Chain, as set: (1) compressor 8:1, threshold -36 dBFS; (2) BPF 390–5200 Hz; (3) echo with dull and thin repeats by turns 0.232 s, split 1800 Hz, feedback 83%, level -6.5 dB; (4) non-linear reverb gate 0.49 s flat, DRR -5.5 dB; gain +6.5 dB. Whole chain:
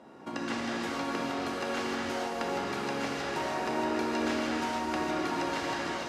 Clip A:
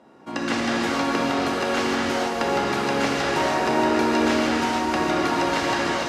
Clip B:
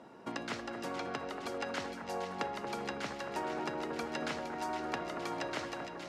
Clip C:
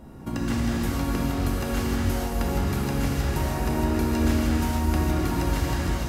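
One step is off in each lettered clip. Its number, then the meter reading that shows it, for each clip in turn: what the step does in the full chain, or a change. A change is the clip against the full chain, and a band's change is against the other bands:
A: 1, mean gain reduction 9.0 dB; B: 4, echo-to-direct 7.0 dB to -4.5 dB; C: 2, 125 Hz band +19.5 dB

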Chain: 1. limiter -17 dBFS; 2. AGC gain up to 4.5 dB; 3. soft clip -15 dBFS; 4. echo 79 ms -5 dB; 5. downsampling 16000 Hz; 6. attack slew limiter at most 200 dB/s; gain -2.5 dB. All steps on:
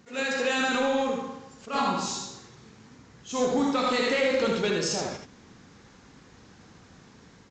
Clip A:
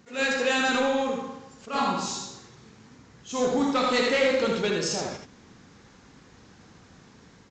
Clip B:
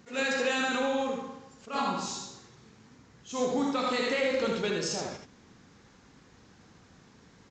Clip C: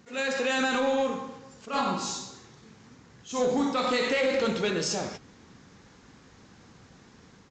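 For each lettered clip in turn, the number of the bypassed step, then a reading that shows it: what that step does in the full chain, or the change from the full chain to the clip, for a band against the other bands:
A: 1, loudness change +1.0 LU; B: 2, momentary loudness spread change -2 LU; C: 4, momentary loudness spread change -1 LU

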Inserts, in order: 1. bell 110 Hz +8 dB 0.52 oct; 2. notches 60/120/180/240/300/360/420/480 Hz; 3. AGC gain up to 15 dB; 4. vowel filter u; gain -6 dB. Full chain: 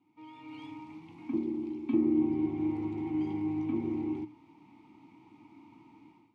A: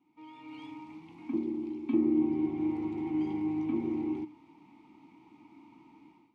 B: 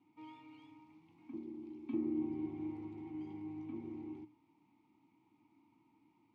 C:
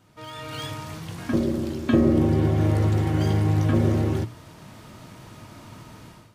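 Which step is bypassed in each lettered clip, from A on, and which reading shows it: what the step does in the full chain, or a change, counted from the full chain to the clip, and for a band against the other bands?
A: 1, 125 Hz band -3.5 dB; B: 3, momentary loudness spread change +2 LU; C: 4, 125 Hz band +11.0 dB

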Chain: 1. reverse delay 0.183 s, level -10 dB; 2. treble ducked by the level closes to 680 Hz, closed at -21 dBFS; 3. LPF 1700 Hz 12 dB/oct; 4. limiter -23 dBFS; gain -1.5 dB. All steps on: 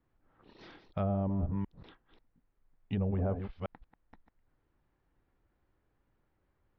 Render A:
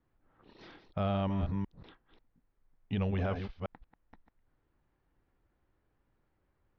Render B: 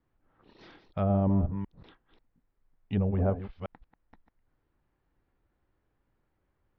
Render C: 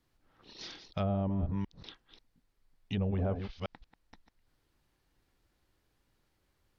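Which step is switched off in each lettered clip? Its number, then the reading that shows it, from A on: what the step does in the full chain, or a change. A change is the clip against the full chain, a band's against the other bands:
2, 2 kHz band +7.5 dB; 4, mean gain reduction 2.0 dB; 3, 2 kHz band +4.5 dB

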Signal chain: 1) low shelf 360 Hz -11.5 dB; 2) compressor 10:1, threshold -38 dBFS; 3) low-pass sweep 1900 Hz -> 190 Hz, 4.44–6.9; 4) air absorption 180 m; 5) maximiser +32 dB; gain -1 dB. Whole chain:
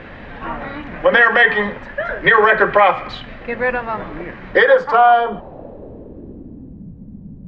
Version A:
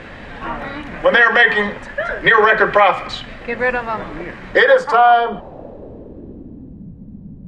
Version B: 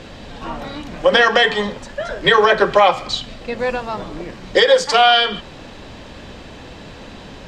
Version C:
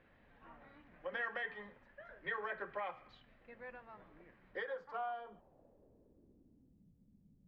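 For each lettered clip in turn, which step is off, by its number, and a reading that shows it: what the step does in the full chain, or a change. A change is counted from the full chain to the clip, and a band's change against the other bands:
4, 4 kHz band +3.0 dB; 3, 4 kHz band +11.5 dB; 5, crest factor change +4.0 dB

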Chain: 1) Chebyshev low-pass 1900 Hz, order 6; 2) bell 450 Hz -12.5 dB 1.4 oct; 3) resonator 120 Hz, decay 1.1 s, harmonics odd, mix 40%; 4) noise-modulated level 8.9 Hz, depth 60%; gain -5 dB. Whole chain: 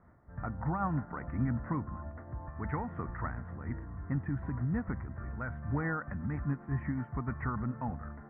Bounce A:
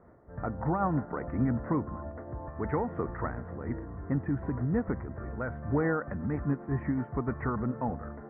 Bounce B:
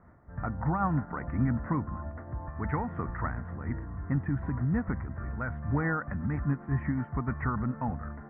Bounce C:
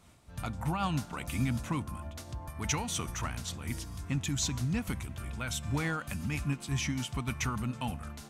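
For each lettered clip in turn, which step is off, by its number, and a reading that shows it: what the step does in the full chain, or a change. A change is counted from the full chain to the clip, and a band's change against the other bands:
2, 500 Hz band +8.0 dB; 3, loudness change +4.0 LU; 1, 2 kHz band +3.5 dB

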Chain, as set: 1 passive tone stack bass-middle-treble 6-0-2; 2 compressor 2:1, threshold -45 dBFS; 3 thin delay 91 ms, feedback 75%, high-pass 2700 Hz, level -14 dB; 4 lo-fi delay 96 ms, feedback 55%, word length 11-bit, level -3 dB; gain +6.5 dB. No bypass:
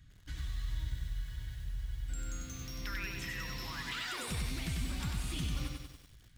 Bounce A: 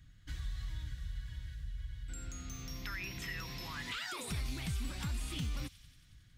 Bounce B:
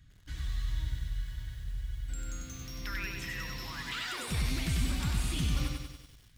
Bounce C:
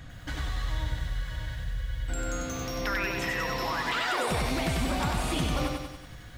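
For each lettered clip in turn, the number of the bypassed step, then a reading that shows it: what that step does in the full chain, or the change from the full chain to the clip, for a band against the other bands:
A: 4, loudness change -2.0 LU; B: 2, momentary loudness spread change +4 LU; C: 1, 500 Hz band +10.0 dB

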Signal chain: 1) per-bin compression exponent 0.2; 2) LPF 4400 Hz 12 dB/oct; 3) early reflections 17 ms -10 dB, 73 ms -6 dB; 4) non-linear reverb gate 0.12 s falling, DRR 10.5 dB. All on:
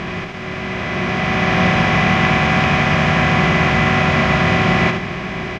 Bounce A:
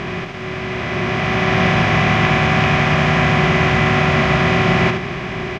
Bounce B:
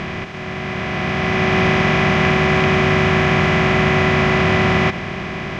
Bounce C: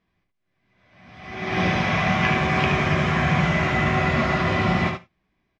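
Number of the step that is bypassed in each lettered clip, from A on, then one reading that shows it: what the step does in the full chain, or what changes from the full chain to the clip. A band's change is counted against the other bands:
4, 500 Hz band +2.0 dB; 3, echo-to-direct -3.5 dB to -10.5 dB; 1, momentary loudness spread change -4 LU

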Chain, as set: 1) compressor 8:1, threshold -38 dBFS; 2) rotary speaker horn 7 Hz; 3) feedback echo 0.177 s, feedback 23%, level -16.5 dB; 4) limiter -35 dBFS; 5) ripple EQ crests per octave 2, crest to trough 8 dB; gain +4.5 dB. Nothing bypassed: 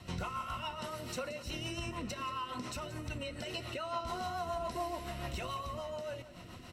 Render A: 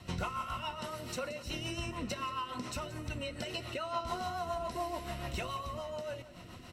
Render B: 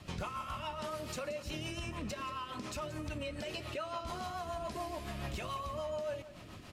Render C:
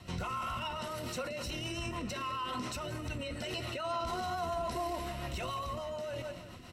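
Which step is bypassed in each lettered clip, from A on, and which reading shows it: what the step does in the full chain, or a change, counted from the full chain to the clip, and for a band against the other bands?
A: 4, crest factor change +3.0 dB; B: 5, crest factor change -3.5 dB; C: 1, mean gain reduction 10.0 dB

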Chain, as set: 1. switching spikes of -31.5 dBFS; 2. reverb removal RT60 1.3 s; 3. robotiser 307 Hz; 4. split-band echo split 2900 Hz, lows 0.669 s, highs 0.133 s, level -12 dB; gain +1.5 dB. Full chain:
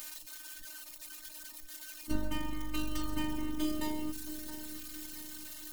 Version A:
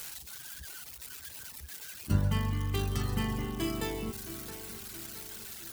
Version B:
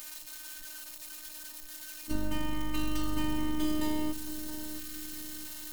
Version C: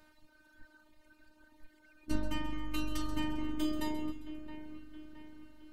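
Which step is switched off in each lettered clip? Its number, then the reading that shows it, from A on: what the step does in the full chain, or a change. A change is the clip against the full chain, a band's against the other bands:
3, 125 Hz band +12.0 dB; 2, crest factor change -2.5 dB; 1, distortion -13 dB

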